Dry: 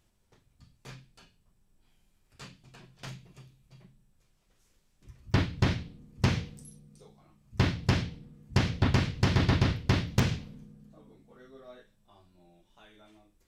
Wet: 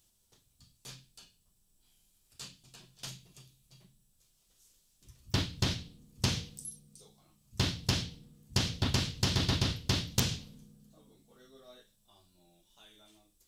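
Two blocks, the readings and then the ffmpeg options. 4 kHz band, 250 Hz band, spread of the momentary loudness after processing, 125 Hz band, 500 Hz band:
+4.5 dB, −6.0 dB, 19 LU, −6.0 dB, −6.0 dB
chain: -af "aexciter=amount=4.8:drive=3.1:freq=3000,volume=-6dB"

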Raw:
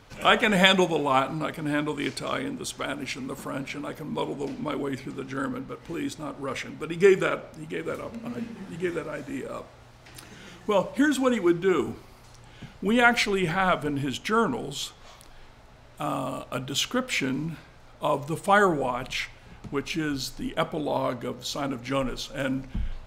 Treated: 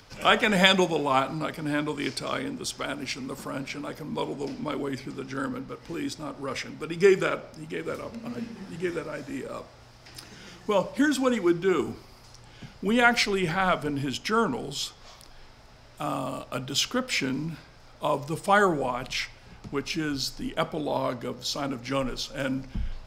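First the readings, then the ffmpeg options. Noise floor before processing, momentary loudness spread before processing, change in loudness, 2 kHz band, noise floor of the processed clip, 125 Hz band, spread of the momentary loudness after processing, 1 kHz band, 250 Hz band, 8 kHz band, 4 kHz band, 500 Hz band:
−51 dBFS, 15 LU, −0.5 dB, −1.0 dB, −51 dBFS, −1.0 dB, 15 LU, −1.0 dB, −1.0 dB, +0.5 dB, +0.5 dB, −1.0 dB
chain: -filter_complex "[0:a]equalizer=frequency=5100:width_type=o:width=0.33:gain=9.5,acrossover=split=180|1400[link_01][link_02][link_03];[link_03]acompressor=mode=upward:threshold=-54dB:ratio=2.5[link_04];[link_01][link_02][link_04]amix=inputs=3:normalize=0,volume=-1dB"

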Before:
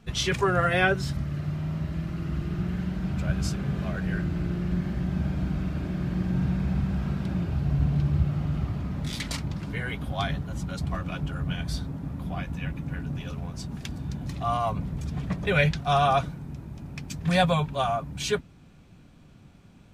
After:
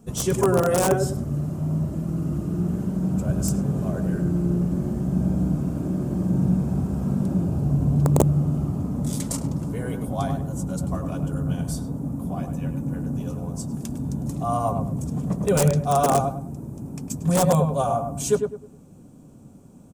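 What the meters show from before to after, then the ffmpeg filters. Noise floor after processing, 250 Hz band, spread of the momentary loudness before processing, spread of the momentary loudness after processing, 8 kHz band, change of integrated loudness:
−47 dBFS, +6.0 dB, 11 LU, 10 LU, +10.0 dB, +4.0 dB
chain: -filter_complex "[0:a]aemphasis=mode=production:type=50kf,asplit=2[link_01][link_02];[link_02]adelay=103,lowpass=frequency=1400:poles=1,volume=-5dB,asplit=2[link_03][link_04];[link_04]adelay=103,lowpass=frequency=1400:poles=1,volume=0.31,asplit=2[link_05][link_06];[link_06]adelay=103,lowpass=frequency=1400:poles=1,volume=0.31,asplit=2[link_07][link_08];[link_08]adelay=103,lowpass=frequency=1400:poles=1,volume=0.31[link_09];[link_01][link_03][link_05][link_07][link_09]amix=inputs=5:normalize=0,aeval=exprs='(mod(4.22*val(0)+1,2)-1)/4.22':channel_layout=same,equalizer=frequency=125:width_type=o:width=1:gain=5,equalizer=frequency=250:width_type=o:width=1:gain=10,equalizer=frequency=500:width_type=o:width=1:gain=9,equalizer=frequency=1000:width_type=o:width=1:gain=5,equalizer=frequency=2000:width_type=o:width=1:gain=-10,equalizer=frequency=4000:width_type=o:width=1:gain=-9,equalizer=frequency=8000:width_type=o:width=1:gain=9,volume=-4.5dB"

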